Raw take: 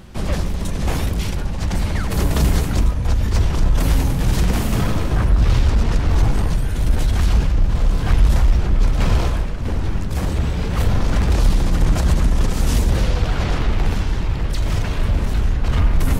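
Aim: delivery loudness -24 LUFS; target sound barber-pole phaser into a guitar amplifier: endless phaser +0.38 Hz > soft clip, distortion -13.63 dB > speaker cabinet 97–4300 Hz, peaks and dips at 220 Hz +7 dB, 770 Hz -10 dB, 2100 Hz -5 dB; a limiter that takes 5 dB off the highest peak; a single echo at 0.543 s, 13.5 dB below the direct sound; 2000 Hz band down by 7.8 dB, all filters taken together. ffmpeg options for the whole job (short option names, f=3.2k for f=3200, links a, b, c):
-filter_complex "[0:a]equalizer=f=2k:t=o:g=-8,alimiter=limit=-9.5dB:level=0:latency=1,aecho=1:1:543:0.211,asplit=2[a][b];[b]afreqshift=0.38[c];[a][c]amix=inputs=2:normalize=1,asoftclip=threshold=-17dB,highpass=97,equalizer=f=220:t=q:w=4:g=7,equalizer=f=770:t=q:w=4:g=-10,equalizer=f=2.1k:t=q:w=4:g=-5,lowpass=f=4.3k:w=0.5412,lowpass=f=4.3k:w=1.3066,volume=6dB"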